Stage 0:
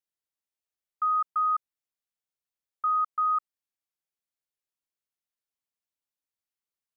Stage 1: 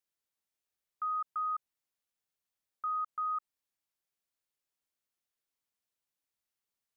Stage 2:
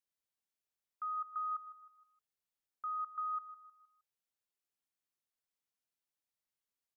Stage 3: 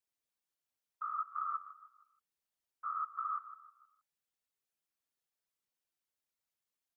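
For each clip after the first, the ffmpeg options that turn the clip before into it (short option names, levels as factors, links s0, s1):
-af "alimiter=level_in=2.51:limit=0.0631:level=0:latency=1:release=47,volume=0.398,volume=1.26"
-af "aecho=1:1:156|312|468|624:0.178|0.0765|0.0329|0.0141,volume=0.562"
-af "afftfilt=real='hypot(re,im)*cos(2*PI*random(0))':imag='hypot(re,im)*sin(2*PI*random(1))':win_size=512:overlap=0.75,volume=2"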